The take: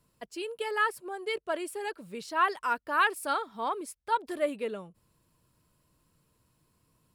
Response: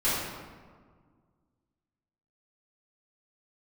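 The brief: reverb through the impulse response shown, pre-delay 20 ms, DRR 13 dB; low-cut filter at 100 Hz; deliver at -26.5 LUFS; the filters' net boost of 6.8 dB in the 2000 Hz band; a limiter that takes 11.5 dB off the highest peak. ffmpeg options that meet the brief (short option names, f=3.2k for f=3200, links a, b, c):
-filter_complex "[0:a]highpass=100,equalizer=f=2k:t=o:g=9,alimiter=limit=-20dB:level=0:latency=1,asplit=2[a][b];[1:a]atrim=start_sample=2205,adelay=20[c];[b][c]afir=irnorm=-1:irlink=0,volume=-25.5dB[d];[a][d]amix=inputs=2:normalize=0,volume=5.5dB"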